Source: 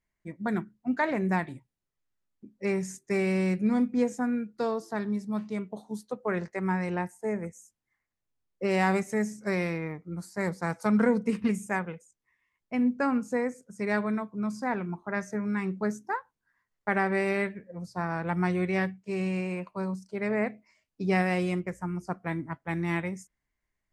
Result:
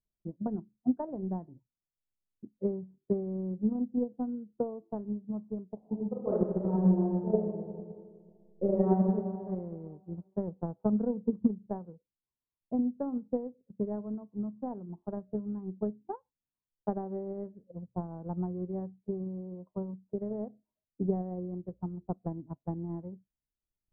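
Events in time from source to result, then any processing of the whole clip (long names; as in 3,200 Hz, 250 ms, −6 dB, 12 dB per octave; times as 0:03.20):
0:05.78–0:08.97: thrown reverb, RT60 1.9 s, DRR −8.5 dB
whole clip: transient designer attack +12 dB, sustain −3 dB; Bessel low-pass filter 520 Hz, order 6; level −8 dB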